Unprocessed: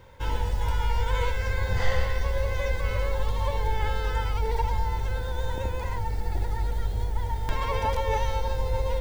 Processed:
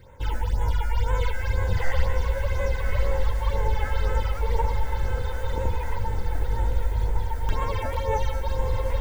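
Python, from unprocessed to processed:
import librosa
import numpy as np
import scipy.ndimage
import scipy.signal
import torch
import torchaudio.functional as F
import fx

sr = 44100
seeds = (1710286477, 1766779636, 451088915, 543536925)

y = fx.phaser_stages(x, sr, stages=8, low_hz=120.0, high_hz=4800.0, hz=2.0, feedback_pct=25)
y = fx.echo_diffused(y, sr, ms=1141, feedback_pct=57, wet_db=-7.5)
y = F.gain(torch.from_numpy(y), 1.5).numpy()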